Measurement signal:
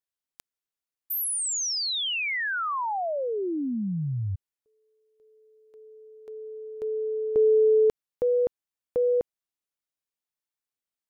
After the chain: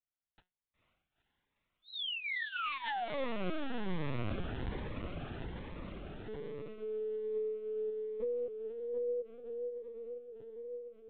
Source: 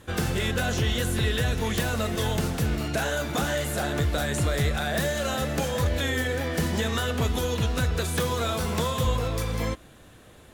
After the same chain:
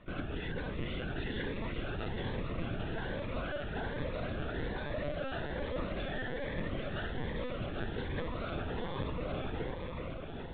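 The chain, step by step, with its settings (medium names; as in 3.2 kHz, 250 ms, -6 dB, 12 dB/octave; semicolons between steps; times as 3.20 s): rattle on loud lows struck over -26 dBFS, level -35 dBFS; low-pass 2.8 kHz 12 dB/octave; bass shelf 70 Hz -8 dB; compression 5:1, threshold -31 dBFS; feedback comb 180 Hz, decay 0.21 s, harmonics all, mix 50%; on a send: echo that smears into a reverb 469 ms, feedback 76%, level -5 dB; on the sum: LPC vocoder at 8 kHz pitch kept; Shepard-style phaser rising 1.2 Hz; trim +1 dB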